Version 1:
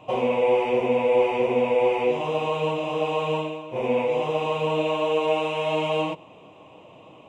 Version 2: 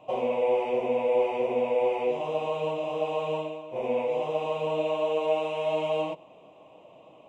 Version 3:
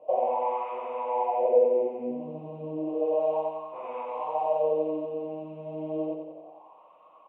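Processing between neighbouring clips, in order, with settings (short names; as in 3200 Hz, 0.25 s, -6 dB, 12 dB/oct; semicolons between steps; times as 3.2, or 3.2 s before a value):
fifteen-band EQ 100 Hz -6 dB, 630 Hz +7 dB, 1600 Hz -3 dB; gain -7.5 dB
wah 0.32 Hz 210–1200 Hz, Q 5.5; feedback echo 90 ms, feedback 55%, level -6 dB; gain +9 dB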